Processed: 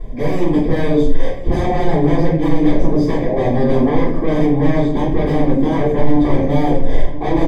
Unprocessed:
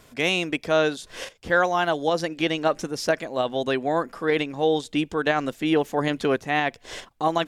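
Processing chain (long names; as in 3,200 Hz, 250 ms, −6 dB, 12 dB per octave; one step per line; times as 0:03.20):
low-shelf EQ 76 Hz +12 dB
hum removal 89.76 Hz, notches 6
reversed playback
upward compression, threshold −26 dBFS
reversed playback
wave folding −25.5 dBFS
moving average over 32 samples
single-tap delay 1,032 ms −18.5 dB
rectangular room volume 81 cubic metres, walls mixed, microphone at 3.2 metres
boost into a limiter +6 dB
level −1 dB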